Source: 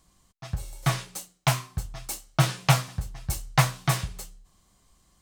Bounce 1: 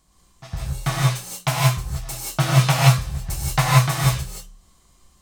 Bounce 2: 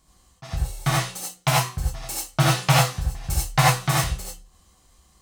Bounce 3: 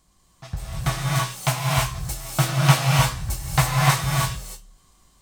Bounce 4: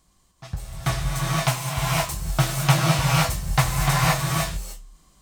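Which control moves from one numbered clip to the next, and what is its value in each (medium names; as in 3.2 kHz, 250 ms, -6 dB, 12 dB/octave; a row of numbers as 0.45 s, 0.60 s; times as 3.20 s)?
gated-style reverb, gate: 200 ms, 110 ms, 350 ms, 540 ms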